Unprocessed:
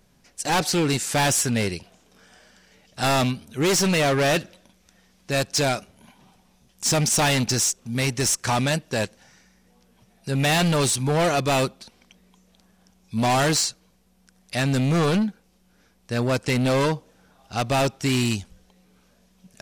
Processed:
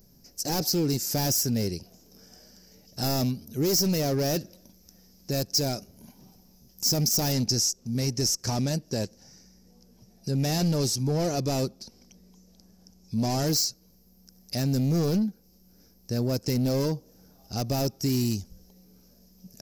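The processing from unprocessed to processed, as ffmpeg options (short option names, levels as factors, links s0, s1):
-filter_complex "[0:a]asettb=1/sr,asplit=3[s0][s1][s2];[s0]atrim=end=7.324[s3];[s1]atrim=start=7.32:end=13.47,asetpts=PTS-STARTPTS,afade=t=in:d=0.004:c=qsin,afade=t=out:st=6.146:d=0.004:c=qsin,lowpass=10000[s4];[s2]atrim=start=13.466[s5];[s3][s4]acrossfade=d=0.004:c1=hsin:c2=qsin[s6];[s6][s5]acrossfade=d=0.004:c1=qsin:c2=hsin,firequalizer=gain_entry='entry(320,0);entry(1100,-14);entry(3500,-14);entry(5100,6);entry(9000,-11);entry(13000,12)':delay=0.05:min_phase=1,acompressor=threshold=0.0158:ratio=1.5,volume=1.41"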